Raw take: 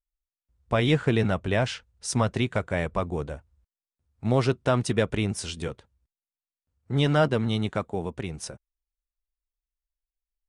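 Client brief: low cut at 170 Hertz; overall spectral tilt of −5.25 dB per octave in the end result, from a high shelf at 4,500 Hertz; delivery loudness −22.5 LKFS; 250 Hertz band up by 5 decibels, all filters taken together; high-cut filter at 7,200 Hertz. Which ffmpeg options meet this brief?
ffmpeg -i in.wav -af "highpass=170,lowpass=7200,equalizer=frequency=250:width_type=o:gain=7.5,highshelf=frequency=4500:gain=3,volume=2.5dB" out.wav

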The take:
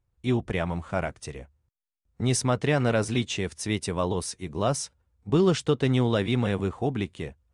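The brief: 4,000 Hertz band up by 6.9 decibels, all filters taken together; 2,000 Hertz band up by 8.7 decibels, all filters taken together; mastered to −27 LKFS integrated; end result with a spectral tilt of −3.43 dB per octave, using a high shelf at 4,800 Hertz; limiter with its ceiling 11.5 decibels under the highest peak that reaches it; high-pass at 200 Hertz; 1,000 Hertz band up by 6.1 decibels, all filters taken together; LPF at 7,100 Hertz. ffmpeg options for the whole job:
ffmpeg -i in.wav -af "highpass=200,lowpass=7100,equalizer=frequency=1000:width_type=o:gain=5.5,equalizer=frequency=2000:width_type=o:gain=7.5,equalizer=frequency=4000:width_type=o:gain=4,highshelf=frequency=4800:gain=5,volume=2dB,alimiter=limit=-14dB:level=0:latency=1" out.wav

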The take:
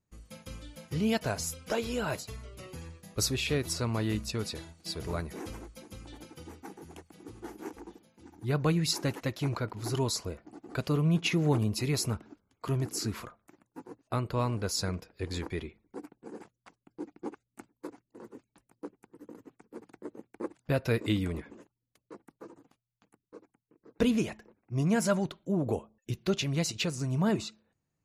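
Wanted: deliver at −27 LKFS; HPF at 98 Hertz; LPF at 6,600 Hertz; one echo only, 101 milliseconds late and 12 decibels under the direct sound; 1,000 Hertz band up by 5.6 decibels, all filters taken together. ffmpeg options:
ffmpeg -i in.wav -af "highpass=98,lowpass=6600,equalizer=frequency=1000:width_type=o:gain=7,aecho=1:1:101:0.251,volume=4.5dB" out.wav

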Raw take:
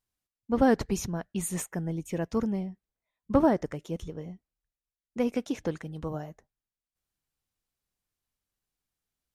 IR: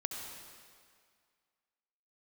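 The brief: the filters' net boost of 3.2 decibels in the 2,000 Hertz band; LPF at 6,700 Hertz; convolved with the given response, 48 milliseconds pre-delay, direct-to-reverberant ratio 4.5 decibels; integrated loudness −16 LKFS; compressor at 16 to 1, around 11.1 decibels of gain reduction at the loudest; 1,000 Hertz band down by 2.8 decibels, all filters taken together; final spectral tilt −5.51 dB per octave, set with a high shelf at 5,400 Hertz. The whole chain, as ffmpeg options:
-filter_complex "[0:a]lowpass=6700,equalizer=frequency=1000:width_type=o:gain=-5,equalizer=frequency=2000:width_type=o:gain=5,highshelf=frequency=5400:gain=6,acompressor=threshold=-28dB:ratio=16,asplit=2[link_01][link_02];[1:a]atrim=start_sample=2205,adelay=48[link_03];[link_02][link_03]afir=irnorm=-1:irlink=0,volume=-5.5dB[link_04];[link_01][link_04]amix=inputs=2:normalize=0,volume=19dB"

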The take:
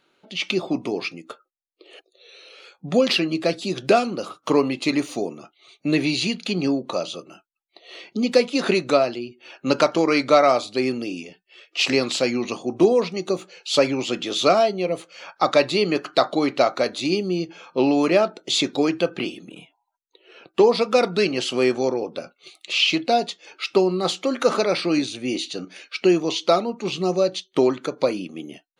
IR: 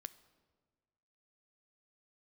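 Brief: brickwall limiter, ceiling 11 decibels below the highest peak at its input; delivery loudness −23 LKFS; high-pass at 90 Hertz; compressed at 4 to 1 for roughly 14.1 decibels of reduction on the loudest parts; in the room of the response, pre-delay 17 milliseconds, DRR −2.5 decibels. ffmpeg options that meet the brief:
-filter_complex "[0:a]highpass=90,acompressor=threshold=-29dB:ratio=4,alimiter=limit=-23dB:level=0:latency=1,asplit=2[link_01][link_02];[1:a]atrim=start_sample=2205,adelay=17[link_03];[link_02][link_03]afir=irnorm=-1:irlink=0,volume=7.5dB[link_04];[link_01][link_04]amix=inputs=2:normalize=0,volume=7dB"

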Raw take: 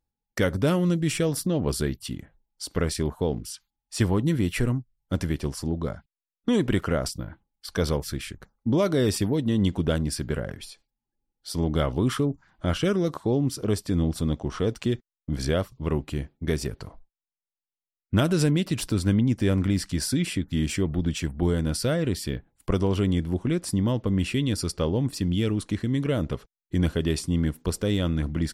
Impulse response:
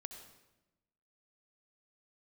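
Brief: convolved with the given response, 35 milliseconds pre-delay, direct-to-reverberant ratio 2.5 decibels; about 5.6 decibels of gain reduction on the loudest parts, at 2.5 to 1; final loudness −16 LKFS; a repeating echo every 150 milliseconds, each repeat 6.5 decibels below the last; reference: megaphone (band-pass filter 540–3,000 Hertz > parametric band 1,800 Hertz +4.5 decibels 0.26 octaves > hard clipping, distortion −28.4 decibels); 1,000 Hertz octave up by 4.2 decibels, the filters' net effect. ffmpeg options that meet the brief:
-filter_complex "[0:a]equalizer=frequency=1000:width_type=o:gain=6,acompressor=threshold=-26dB:ratio=2.5,aecho=1:1:150|300|450|600|750|900:0.473|0.222|0.105|0.0491|0.0231|0.0109,asplit=2[link_01][link_02];[1:a]atrim=start_sample=2205,adelay=35[link_03];[link_02][link_03]afir=irnorm=-1:irlink=0,volume=1.5dB[link_04];[link_01][link_04]amix=inputs=2:normalize=0,highpass=540,lowpass=3000,equalizer=frequency=1800:width_type=o:width=0.26:gain=4.5,asoftclip=type=hard:threshold=-21dB,volume=19dB"

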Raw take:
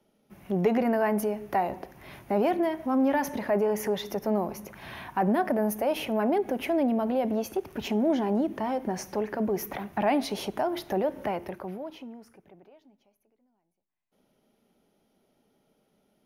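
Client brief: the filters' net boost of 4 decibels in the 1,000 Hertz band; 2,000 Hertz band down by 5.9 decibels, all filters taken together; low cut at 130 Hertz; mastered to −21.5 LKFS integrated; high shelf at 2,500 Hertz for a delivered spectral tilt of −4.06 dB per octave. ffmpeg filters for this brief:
ffmpeg -i in.wav -af "highpass=130,equalizer=frequency=1000:width_type=o:gain=8,equalizer=frequency=2000:width_type=o:gain=-7,highshelf=frequency=2500:gain=-8,volume=5.5dB" out.wav

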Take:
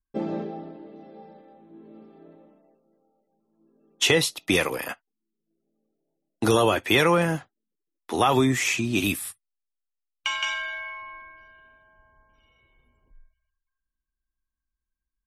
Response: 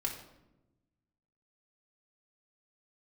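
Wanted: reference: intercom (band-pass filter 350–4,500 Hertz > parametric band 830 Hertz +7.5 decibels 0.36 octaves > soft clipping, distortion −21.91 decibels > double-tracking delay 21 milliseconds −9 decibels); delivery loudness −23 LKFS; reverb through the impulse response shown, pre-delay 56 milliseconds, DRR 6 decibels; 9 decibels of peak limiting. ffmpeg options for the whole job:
-filter_complex "[0:a]alimiter=limit=-16.5dB:level=0:latency=1,asplit=2[link_01][link_02];[1:a]atrim=start_sample=2205,adelay=56[link_03];[link_02][link_03]afir=irnorm=-1:irlink=0,volume=-8.5dB[link_04];[link_01][link_04]amix=inputs=2:normalize=0,highpass=350,lowpass=4500,equalizer=frequency=830:width_type=o:width=0.36:gain=7.5,asoftclip=threshold=-15.5dB,asplit=2[link_05][link_06];[link_06]adelay=21,volume=-9dB[link_07];[link_05][link_07]amix=inputs=2:normalize=0,volume=5.5dB"

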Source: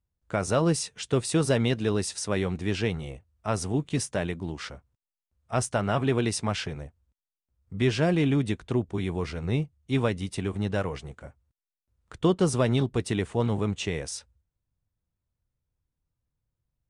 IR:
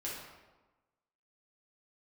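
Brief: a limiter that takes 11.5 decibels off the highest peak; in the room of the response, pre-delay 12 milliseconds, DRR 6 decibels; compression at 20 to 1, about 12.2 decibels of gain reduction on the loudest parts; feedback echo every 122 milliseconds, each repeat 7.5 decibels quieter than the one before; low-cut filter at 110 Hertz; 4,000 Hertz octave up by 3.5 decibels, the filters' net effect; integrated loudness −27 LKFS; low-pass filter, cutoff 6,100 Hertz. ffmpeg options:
-filter_complex "[0:a]highpass=110,lowpass=6100,equalizer=frequency=4000:width_type=o:gain=5.5,acompressor=threshold=-30dB:ratio=20,alimiter=level_in=3dB:limit=-24dB:level=0:latency=1,volume=-3dB,aecho=1:1:122|244|366|488|610:0.422|0.177|0.0744|0.0312|0.0131,asplit=2[link_01][link_02];[1:a]atrim=start_sample=2205,adelay=12[link_03];[link_02][link_03]afir=irnorm=-1:irlink=0,volume=-7.5dB[link_04];[link_01][link_04]amix=inputs=2:normalize=0,volume=10dB"

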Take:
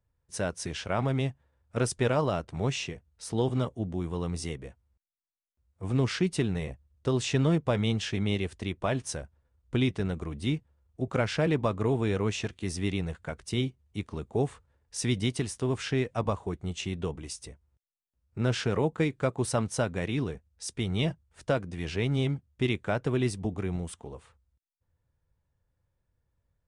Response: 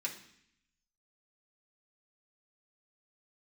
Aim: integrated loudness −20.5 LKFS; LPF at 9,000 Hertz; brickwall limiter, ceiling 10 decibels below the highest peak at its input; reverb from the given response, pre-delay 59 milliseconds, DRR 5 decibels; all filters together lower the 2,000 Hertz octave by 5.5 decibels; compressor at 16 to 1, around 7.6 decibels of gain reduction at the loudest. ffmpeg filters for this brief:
-filter_complex "[0:a]lowpass=9000,equalizer=frequency=2000:width_type=o:gain=-7.5,acompressor=threshold=-29dB:ratio=16,alimiter=level_in=5dB:limit=-24dB:level=0:latency=1,volume=-5dB,asplit=2[link_01][link_02];[1:a]atrim=start_sample=2205,adelay=59[link_03];[link_02][link_03]afir=irnorm=-1:irlink=0,volume=-6.5dB[link_04];[link_01][link_04]amix=inputs=2:normalize=0,volume=18.5dB"

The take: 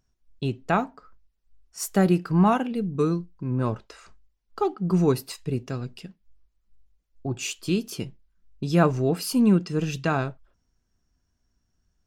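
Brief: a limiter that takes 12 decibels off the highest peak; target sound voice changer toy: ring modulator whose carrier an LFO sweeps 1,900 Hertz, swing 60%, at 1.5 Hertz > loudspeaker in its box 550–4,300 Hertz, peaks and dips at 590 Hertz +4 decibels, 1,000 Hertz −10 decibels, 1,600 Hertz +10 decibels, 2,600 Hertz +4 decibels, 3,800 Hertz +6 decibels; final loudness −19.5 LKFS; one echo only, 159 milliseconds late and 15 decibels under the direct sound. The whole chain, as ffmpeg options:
ffmpeg -i in.wav -af "alimiter=limit=-19.5dB:level=0:latency=1,aecho=1:1:159:0.178,aeval=exprs='val(0)*sin(2*PI*1900*n/s+1900*0.6/1.5*sin(2*PI*1.5*n/s))':channel_layout=same,highpass=550,equalizer=frequency=590:width_type=q:width=4:gain=4,equalizer=frequency=1000:width_type=q:width=4:gain=-10,equalizer=frequency=1600:width_type=q:width=4:gain=10,equalizer=frequency=2600:width_type=q:width=4:gain=4,equalizer=frequency=3800:width_type=q:width=4:gain=6,lowpass=frequency=4300:width=0.5412,lowpass=frequency=4300:width=1.3066,volume=7.5dB" out.wav

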